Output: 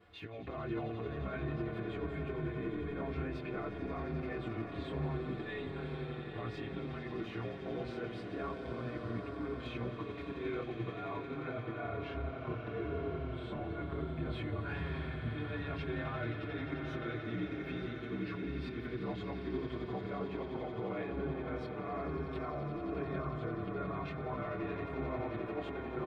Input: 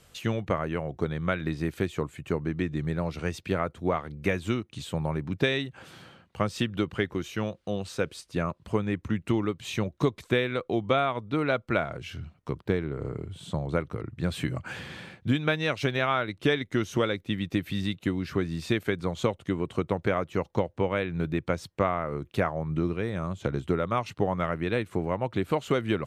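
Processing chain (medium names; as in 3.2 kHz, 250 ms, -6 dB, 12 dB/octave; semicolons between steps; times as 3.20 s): short-time spectra conjugated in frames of 53 ms; high-pass 82 Hz; band-stop 2.9 kHz, Q 15; comb 2.8 ms, depth 52%; compressor with a negative ratio -33 dBFS, ratio -0.5; peak limiter -29.5 dBFS, peak gain reduction 11 dB; distance through air 440 m; on a send: echo with a slow build-up 88 ms, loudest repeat 8, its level -12 dB; on the sum: endless flanger 6.4 ms -1.1 Hz; trim +2.5 dB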